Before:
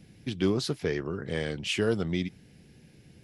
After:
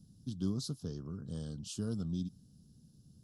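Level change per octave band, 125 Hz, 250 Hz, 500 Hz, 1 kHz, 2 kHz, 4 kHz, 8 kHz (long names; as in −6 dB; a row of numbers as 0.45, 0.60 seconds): −5.0, −7.0, −18.0, −18.0, −29.0, −13.5, −5.5 decibels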